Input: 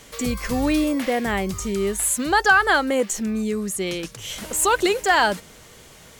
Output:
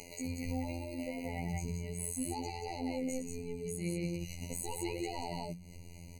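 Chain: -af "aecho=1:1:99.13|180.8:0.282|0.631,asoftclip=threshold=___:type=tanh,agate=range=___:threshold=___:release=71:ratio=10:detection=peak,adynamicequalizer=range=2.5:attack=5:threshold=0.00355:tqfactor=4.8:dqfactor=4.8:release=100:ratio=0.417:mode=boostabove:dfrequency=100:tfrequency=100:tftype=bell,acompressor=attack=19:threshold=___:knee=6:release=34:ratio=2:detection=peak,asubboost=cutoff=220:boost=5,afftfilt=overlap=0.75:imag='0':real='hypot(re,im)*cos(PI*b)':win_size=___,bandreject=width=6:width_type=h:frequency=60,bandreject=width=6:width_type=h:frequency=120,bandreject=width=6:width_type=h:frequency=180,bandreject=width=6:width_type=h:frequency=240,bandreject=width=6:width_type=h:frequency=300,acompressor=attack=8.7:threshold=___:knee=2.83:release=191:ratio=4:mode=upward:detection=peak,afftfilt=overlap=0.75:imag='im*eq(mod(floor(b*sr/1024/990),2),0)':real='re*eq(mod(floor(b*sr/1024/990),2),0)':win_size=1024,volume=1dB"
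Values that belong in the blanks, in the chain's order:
-15dB, -20dB, -32dB, -48dB, 2048, -41dB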